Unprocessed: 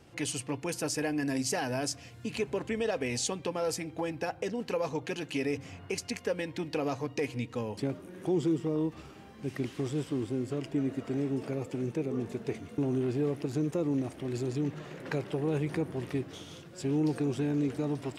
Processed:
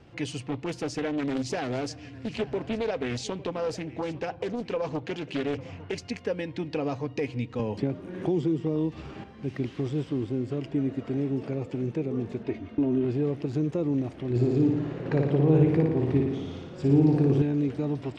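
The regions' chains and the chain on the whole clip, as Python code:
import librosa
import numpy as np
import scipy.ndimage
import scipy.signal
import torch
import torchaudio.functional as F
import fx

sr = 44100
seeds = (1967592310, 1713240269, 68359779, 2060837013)

y = fx.chain(x, sr, fx.echo_single(ms=853, db=-18.5),
    fx.doppler_dist(depth_ms=0.52), at=(0.43, 5.96))
y = fx.chain(y, sr, fx.notch(hz=1300.0, q=20.0),
    fx.band_squash(depth_pct=70), at=(7.59, 9.24))
y = fx.chain(y, sr, fx.air_absorb(metres=130.0),
    fx.comb(ms=3.2, depth=0.65), at=(12.43, 13.05))
y = fx.chain(y, sr, fx.tilt_shelf(db=4.5, hz=1300.0),
    fx.room_flutter(wall_m=9.8, rt60_s=0.99), at=(14.3, 17.42))
y = fx.dynamic_eq(y, sr, hz=1400.0, q=0.86, threshold_db=-46.0, ratio=4.0, max_db=-3)
y = scipy.signal.sosfilt(scipy.signal.butter(2, 4200.0, 'lowpass', fs=sr, output='sos'), y)
y = fx.low_shelf(y, sr, hz=190.0, db=4.0)
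y = F.gain(torch.from_numpy(y), 2.0).numpy()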